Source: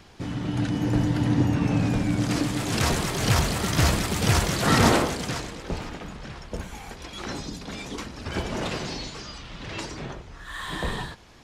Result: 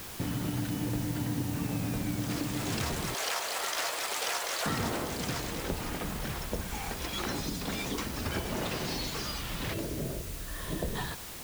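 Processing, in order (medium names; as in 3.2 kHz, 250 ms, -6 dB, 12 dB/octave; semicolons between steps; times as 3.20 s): 3.14–4.66 s: high-pass 510 Hz 24 dB/octave; 9.73–10.95 s: time-frequency box 700–9000 Hz -14 dB; compression 6:1, threshold -34 dBFS, peak gain reduction 18.5 dB; word length cut 8-bit, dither triangular; trim +3.5 dB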